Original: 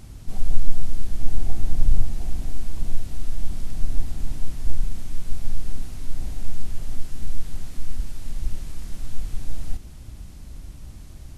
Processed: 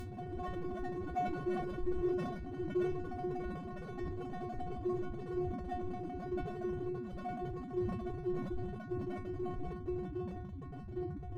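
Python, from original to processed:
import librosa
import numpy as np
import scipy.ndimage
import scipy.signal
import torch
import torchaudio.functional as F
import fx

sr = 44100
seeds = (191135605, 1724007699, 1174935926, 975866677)

p1 = fx.local_reverse(x, sr, ms=162.0)
p2 = scipy.signal.sosfilt(scipy.signal.butter(2, 170.0, 'highpass', fs=sr, output='sos'), p1)
p3 = fx.low_shelf(p2, sr, hz=300.0, db=2.0)
p4 = fx.echo_feedback(p3, sr, ms=83, feedback_pct=46, wet_db=-9.0)
p5 = fx.fuzz(p4, sr, gain_db=53.0, gate_db=-59.0)
p6 = p4 + (p5 * librosa.db_to_amplitude(-11.0))
p7 = fx.spec_topn(p6, sr, count=2)
p8 = 10.0 ** (-30.5 / 20.0) * (np.abs((p7 / 10.0 ** (-30.5 / 20.0) + 3.0) % 4.0 - 2.0) - 1.0)
p9 = fx.stiff_resonator(p8, sr, f0_hz=360.0, decay_s=0.34, stiffness=0.002)
p10 = fx.sustainer(p9, sr, db_per_s=40.0)
y = p10 * librosa.db_to_amplitude(17.5)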